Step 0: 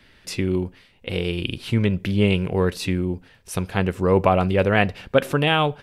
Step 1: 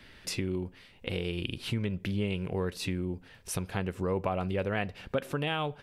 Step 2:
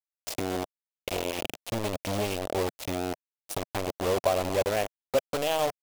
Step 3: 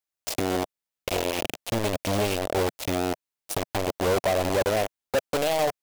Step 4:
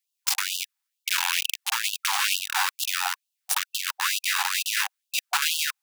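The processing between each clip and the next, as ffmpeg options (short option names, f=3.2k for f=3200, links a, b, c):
-af "acompressor=threshold=-34dB:ratio=2.5"
-af "acrusher=bits=4:mix=0:aa=0.000001,equalizer=f=160:t=o:w=0.67:g=-9,equalizer=f=630:t=o:w=0.67:g=10,equalizer=f=1.6k:t=o:w=0.67:g=-4"
-af "volume=24.5dB,asoftclip=hard,volume=-24.5dB,volume=5.5dB"
-filter_complex "[0:a]asplit=2[a][b];[b]acrusher=samples=41:mix=1:aa=0.000001,volume=-6dB[c];[a][c]amix=inputs=2:normalize=0,afftfilt=real='re*gte(b*sr/1024,730*pow(2700/730,0.5+0.5*sin(2*PI*2.2*pts/sr)))':imag='im*gte(b*sr/1024,730*pow(2700/730,0.5+0.5*sin(2*PI*2.2*pts/sr)))':win_size=1024:overlap=0.75,volume=7.5dB"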